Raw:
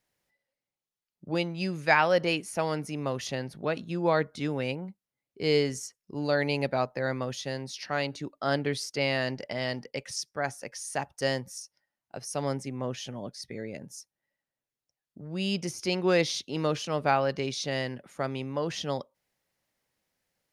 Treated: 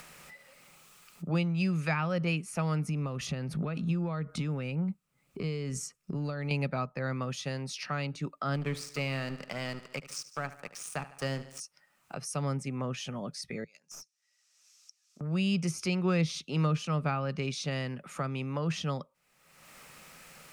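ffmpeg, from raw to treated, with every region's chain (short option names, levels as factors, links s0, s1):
-filter_complex "[0:a]asettb=1/sr,asplit=3[s0][s1][s2];[s0]atrim=end=2.864[s3];[s1]atrim=start=2.86:end=6.51,asetpts=PTS-STARTPTS,afade=t=in:d=0.004:c=qsin,afade=t=out:st=3.646:d=0.004:c=qsin,lowshelf=f=290:g=11.5,acompressor=threshold=0.0251:ratio=10:attack=3.2:release=140:knee=1:detection=peak[s4];[s2]atrim=start=6.506[s5];[s3][s4]acrossfade=d=0.004:c1=hsin:c2=qsin[s6];[s6][s5]acrossfade=d=0.004:c1=qsin:c2=hsin,asettb=1/sr,asplit=3[s7][s8][s9];[s7]atrim=end=8.544[s10];[s8]atrim=start=8.54:end=11.6,asetpts=PTS-STARTPTS,afade=t=in:d=0.004:c=qsin,afade=t=out:st=3.056:d=0.004:c=qsin,aeval=exprs='sgn(val(0))*max(abs(val(0))-0.00891,0)':c=same,aecho=1:1:74|148|222|296:0.158|0.0713|0.0321|0.0144,atrim=end_sample=134946[s11];[s9]atrim=start=11.596[s12];[s10][s11]acrossfade=d=0.004:c1=hsin:c2=qsin[s13];[s13][s12]acrossfade=d=0.004:c1=qsin:c2=hsin,asettb=1/sr,asplit=3[s14][s15][s16];[s14]atrim=end=13.644[s17];[s15]atrim=start=13.64:end=15.21,asetpts=PTS-STARTPTS,afade=t=in:d=0.004:c=qsin,afade=t=out:st=1.566:d=0.004:c=qsin,bandpass=f=5700:t=q:w=3.9,aeval=exprs='clip(val(0),-1,0.00282)':c=same,acompressor=threshold=0.00178:ratio=5:attack=3.2:release=140:knee=1:detection=peak[s18];[s16]atrim=start=15.206[s19];[s17][s18]acrossfade=d=0.004:c1=hsin:c2=qsin[s20];[s20][s19]acrossfade=d=0.004:c1=qsin:c2=hsin,acompressor=mode=upward:threshold=0.0126:ratio=2.5,equalizer=f=100:t=o:w=0.33:g=-11,equalizer=f=160:t=o:w=0.33:g=7,equalizer=f=315:t=o:w=0.33:g=-4,equalizer=f=1250:t=o:w=0.33:g=12,equalizer=f=2500:t=o:w=0.33:g=8,equalizer=f=8000:t=o:w=0.33:g=6,acrossover=split=260[s21][s22];[s22]acompressor=threshold=0.00891:ratio=2.5[s23];[s21][s23]amix=inputs=2:normalize=0,volume=1.33"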